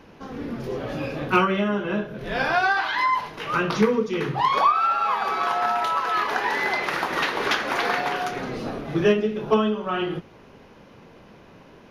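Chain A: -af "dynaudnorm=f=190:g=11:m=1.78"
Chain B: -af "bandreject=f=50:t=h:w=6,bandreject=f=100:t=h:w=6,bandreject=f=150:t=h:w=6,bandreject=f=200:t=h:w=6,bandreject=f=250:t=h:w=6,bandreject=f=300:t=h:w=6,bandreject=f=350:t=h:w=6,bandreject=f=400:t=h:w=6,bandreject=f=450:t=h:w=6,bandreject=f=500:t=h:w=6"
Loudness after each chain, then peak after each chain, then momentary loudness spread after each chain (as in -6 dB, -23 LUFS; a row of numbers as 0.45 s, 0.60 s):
-19.0 LUFS, -23.5 LUFS; -4.5 dBFS, -8.0 dBFS; 11 LU, 10 LU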